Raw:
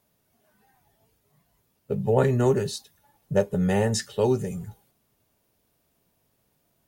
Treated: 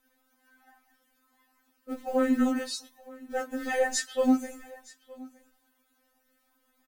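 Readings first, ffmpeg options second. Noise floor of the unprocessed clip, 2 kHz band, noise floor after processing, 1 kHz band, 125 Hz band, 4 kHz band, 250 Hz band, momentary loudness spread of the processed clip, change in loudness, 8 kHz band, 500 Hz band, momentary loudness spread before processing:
−71 dBFS, +2.0 dB, −72 dBFS, −1.5 dB, below −30 dB, −1.5 dB, 0.0 dB, 22 LU, −4.0 dB, 0.0 dB, −6.5 dB, 13 LU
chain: -af "acrusher=bits=8:mode=log:mix=0:aa=0.000001,alimiter=limit=-16.5dB:level=0:latency=1:release=11,flanger=delay=3:depth=7.9:regen=40:speed=1.6:shape=sinusoidal,equalizer=frequency=1500:width_type=o:width=0.95:gain=10,aecho=1:1:918:0.0841,afftfilt=real='re*3.46*eq(mod(b,12),0)':imag='im*3.46*eq(mod(b,12),0)':win_size=2048:overlap=0.75,volume=5dB"

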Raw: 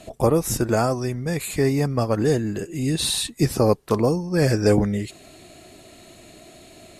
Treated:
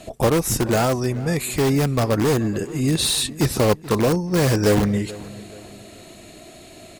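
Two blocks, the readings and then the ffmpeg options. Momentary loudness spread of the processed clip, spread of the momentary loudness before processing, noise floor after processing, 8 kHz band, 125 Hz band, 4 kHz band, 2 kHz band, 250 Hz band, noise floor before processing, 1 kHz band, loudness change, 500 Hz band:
10 LU, 7 LU, −44 dBFS, +3.5 dB, +2.0 dB, +3.5 dB, +3.5 dB, +1.5 dB, −48 dBFS, +2.0 dB, +1.5 dB, +0.5 dB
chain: -filter_complex "[0:a]asplit=2[link_01][link_02];[link_02]aeval=exprs='(mod(5.96*val(0)+1,2)-1)/5.96':channel_layout=same,volume=-7dB[link_03];[link_01][link_03]amix=inputs=2:normalize=0,asplit=2[link_04][link_05];[link_05]adelay=431,lowpass=frequency=3200:poles=1,volume=-18dB,asplit=2[link_06][link_07];[link_07]adelay=431,lowpass=frequency=3200:poles=1,volume=0.41,asplit=2[link_08][link_09];[link_09]adelay=431,lowpass=frequency=3200:poles=1,volume=0.41[link_10];[link_04][link_06][link_08][link_10]amix=inputs=4:normalize=0"

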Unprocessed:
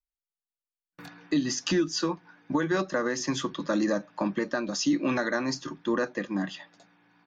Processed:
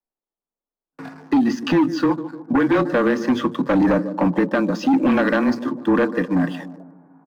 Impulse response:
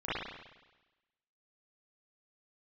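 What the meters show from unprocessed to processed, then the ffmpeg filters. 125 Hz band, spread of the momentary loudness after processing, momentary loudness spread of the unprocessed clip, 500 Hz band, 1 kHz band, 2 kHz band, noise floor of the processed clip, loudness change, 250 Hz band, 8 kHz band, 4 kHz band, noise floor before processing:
+9.5 dB, 6 LU, 6 LU, +8.5 dB, +10.0 dB, +6.5 dB, below −85 dBFS, +9.0 dB, +10.5 dB, can't be measured, −1.0 dB, below −85 dBFS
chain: -filter_complex "[0:a]lowpass=2200,lowshelf=frequency=160:width_type=q:width=1.5:gain=-13,asplit=2[link_01][link_02];[link_02]adelay=150,lowpass=frequency=1700:poles=1,volume=-14dB,asplit=2[link_03][link_04];[link_04]adelay=150,lowpass=frequency=1700:poles=1,volume=0.52,asplit=2[link_05][link_06];[link_06]adelay=150,lowpass=frequency=1700:poles=1,volume=0.52,asplit=2[link_07][link_08];[link_08]adelay=150,lowpass=frequency=1700:poles=1,volume=0.52,asplit=2[link_09][link_10];[link_10]adelay=150,lowpass=frequency=1700:poles=1,volume=0.52[link_11];[link_01][link_03][link_05][link_07][link_09][link_11]amix=inputs=6:normalize=0,acrossover=split=180|1200[link_12][link_13][link_14];[link_14]aeval=exprs='sgn(val(0))*max(abs(val(0))-0.00112,0)':channel_layout=same[link_15];[link_12][link_13][link_15]amix=inputs=3:normalize=0,afreqshift=-21,aeval=exprs='0.251*sin(PI/2*2.24*val(0)/0.251)':channel_layout=same"

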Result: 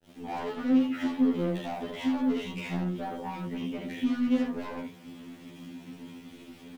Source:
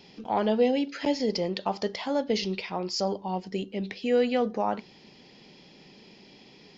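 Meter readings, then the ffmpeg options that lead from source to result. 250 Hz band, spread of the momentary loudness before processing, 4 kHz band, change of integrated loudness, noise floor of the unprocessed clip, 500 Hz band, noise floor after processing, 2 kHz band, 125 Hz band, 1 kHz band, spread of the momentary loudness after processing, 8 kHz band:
+3.0 dB, 9 LU, −9.0 dB, −2.0 dB, −54 dBFS, −10.0 dB, −51 dBFS, −2.5 dB, +1.0 dB, −7.0 dB, 19 LU, can't be measured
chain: -filter_complex "[0:a]acompressor=threshold=-38dB:ratio=2,equalizer=frequency=120:width_type=o:width=0.3:gain=5,aeval=exprs='val(0)+0.00251*(sin(2*PI*50*n/s)+sin(2*PI*2*50*n/s)/2+sin(2*PI*3*50*n/s)/3+sin(2*PI*4*50*n/s)/4+sin(2*PI*5*50*n/s)/5)':channel_layout=same,agate=range=-33dB:threshold=-43dB:ratio=3:detection=peak,asplit=2[link_01][link_02];[link_02]adelay=34,volume=-6dB[link_03];[link_01][link_03]amix=inputs=2:normalize=0,aresample=8000,aresample=44100,asplit=2[link_04][link_05];[link_05]aecho=0:1:12|35|73:0.251|0.447|0.708[link_06];[link_04][link_06]amix=inputs=2:normalize=0,asoftclip=type=tanh:threshold=-37dB,dynaudnorm=framelen=160:gausssize=3:maxgain=5dB,equalizer=frequency=250:width_type=o:width=0.63:gain=13.5,aeval=exprs='val(0)*gte(abs(val(0)),0.00376)':channel_layout=same,afftfilt=real='re*2*eq(mod(b,4),0)':imag='im*2*eq(mod(b,4),0)':win_size=2048:overlap=0.75,volume=1dB"

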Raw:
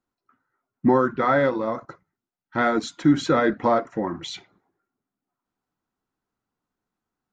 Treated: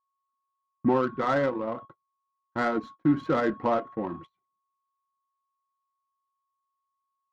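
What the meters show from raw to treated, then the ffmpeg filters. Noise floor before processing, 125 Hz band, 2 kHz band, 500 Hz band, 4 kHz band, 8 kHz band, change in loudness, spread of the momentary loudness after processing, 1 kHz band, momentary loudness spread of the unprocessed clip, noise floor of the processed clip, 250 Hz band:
below −85 dBFS, −5.0 dB, −6.5 dB, −5.0 dB, −11.5 dB, can't be measured, −5.5 dB, 11 LU, −5.5 dB, 13 LU, −82 dBFS, −5.0 dB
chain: -af "aeval=exprs='val(0)+0.0141*sin(2*PI*1100*n/s)':channel_layout=same,adynamicsmooth=sensitivity=1:basefreq=1300,agate=range=-34dB:threshold=-36dB:ratio=16:detection=peak,volume=-5dB"

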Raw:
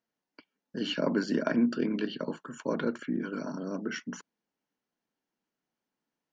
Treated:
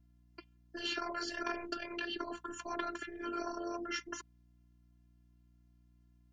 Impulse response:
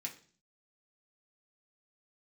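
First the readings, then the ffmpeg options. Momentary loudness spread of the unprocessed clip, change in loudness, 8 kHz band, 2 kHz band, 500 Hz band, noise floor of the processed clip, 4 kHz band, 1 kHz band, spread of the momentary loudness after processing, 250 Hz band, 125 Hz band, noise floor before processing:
11 LU, −8.0 dB, can't be measured, −2.5 dB, −10.0 dB, −67 dBFS, −2.0 dB, +1.0 dB, 13 LU, −13.5 dB, −20.0 dB, below −85 dBFS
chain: -af "afftfilt=real='re*lt(hypot(re,im),0.1)':imag='im*lt(hypot(re,im),0.1)':win_size=1024:overlap=0.75,afftfilt=real='hypot(re,im)*cos(PI*b)':imag='0':win_size=512:overlap=0.75,aeval=exprs='val(0)+0.000355*(sin(2*PI*60*n/s)+sin(2*PI*2*60*n/s)/2+sin(2*PI*3*60*n/s)/3+sin(2*PI*4*60*n/s)/4+sin(2*PI*5*60*n/s)/5)':channel_layout=same,volume=4.5dB"

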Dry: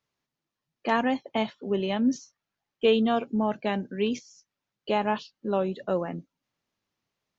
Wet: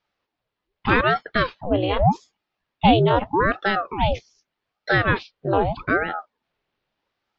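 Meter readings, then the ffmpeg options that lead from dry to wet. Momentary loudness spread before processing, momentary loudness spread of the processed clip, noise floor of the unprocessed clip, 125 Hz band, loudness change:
12 LU, 11 LU, below −85 dBFS, +14.0 dB, +6.5 dB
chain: -af "afreqshift=53,lowpass=frequency=4100:width=0.5412,lowpass=frequency=4100:width=1.3066,aeval=exprs='val(0)*sin(2*PI*600*n/s+600*0.8/0.82*sin(2*PI*0.82*n/s))':channel_layout=same,volume=9dB"

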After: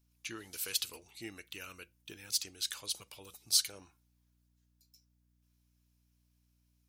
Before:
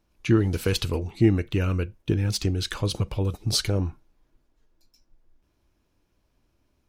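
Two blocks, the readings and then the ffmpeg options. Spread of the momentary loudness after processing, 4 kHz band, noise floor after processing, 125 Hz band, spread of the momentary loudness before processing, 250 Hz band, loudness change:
22 LU, −4.5 dB, −74 dBFS, −36.0 dB, 6 LU, −27.5 dB, −9.5 dB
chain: -af "aderivative,aeval=exprs='val(0)+0.000251*(sin(2*PI*60*n/s)+sin(2*PI*2*60*n/s)/2+sin(2*PI*3*60*n/s)/3+sin(2*PI*4*60*n/s)/4+sin(2*PI*5*60*n/s)/5)':channel_layout=same"

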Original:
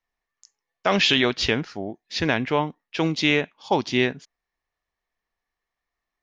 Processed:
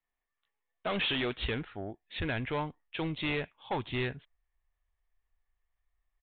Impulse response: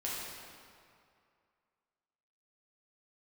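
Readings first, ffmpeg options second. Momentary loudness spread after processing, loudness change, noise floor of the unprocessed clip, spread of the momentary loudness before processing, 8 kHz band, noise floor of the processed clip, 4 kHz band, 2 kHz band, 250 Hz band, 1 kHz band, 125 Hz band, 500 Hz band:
10 LU, −11.5 dB, below −85 dBFS, 10 LU, can't be measured, below −85 dBFS, −12.5 dB, −11.5 dB, −12.0 dB, −11.5 dB, −7.0 dB, −11.5 dB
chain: -af "asubboost=boost=11.5:cutoff=71,aresample=8000,asoftclip=type=tanh:threshold=-21dB,aresample=44100,volume=-6dB"

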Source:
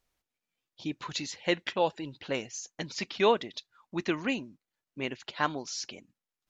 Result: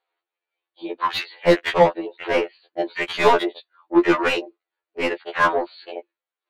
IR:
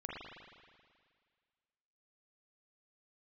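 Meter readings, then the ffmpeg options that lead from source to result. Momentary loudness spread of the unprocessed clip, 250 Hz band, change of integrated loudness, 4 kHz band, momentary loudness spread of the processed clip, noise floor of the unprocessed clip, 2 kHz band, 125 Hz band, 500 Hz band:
15 LU, +10.5 dB, +11.5 dB, +6.5 dB, 17 LU, below −85 dBFS, +11.5 dB, +7.0 dB, +11.5 dB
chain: -filter_complex "[0:a]afftfilt=real='re*between(b*sr/4096,320,4700)':imag='im*between(b*sr/4096,320,4700)':win_size=4096:overlap=0.75,afwtdn=0.01,asplit=2[link_01][link_02];[link_02]highpass=frequency=720:poles=1,volume=26dB,asoftclip=type=tanh:threshold=-12dB[link_03];[link_01][link_03]amix=inputs=2:normalize=0,lowpass=frequency=1200:poles=1,volume=-6dB,afftfilt=real='re*2*eq(mod(b,4),0)':imag='im*2*eq(mod(b,4),0)':win_size=2048:overlap=0.75,volume=8.5dB"

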